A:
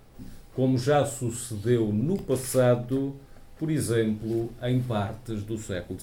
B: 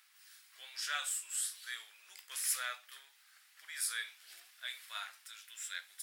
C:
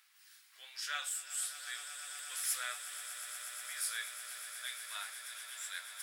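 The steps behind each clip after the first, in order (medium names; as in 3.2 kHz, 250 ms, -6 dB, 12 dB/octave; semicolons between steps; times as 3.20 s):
inverse Chebyshev high-pass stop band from 260 Hz, stop band 80 dB
echo with a slow build-up 120 ms, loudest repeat 8, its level -14 dB; trim -1.5 dB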